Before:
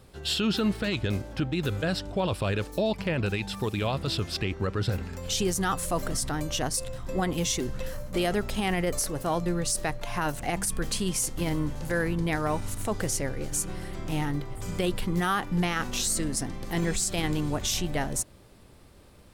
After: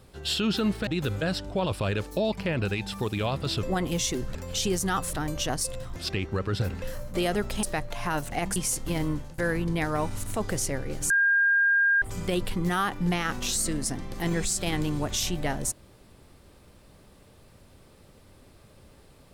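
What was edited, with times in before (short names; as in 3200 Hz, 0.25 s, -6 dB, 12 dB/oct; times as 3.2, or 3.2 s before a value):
0.87–1.48 cut
4.24–5.1 swap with 7.09–7.81
5.88–6.26 cut
8.62–9.74 cut
10.67–11.07 cut
11.63–11.89 fade out, to -18.5 dB
13.61–14.53 bleep 1610 Hz -18.5 dBFS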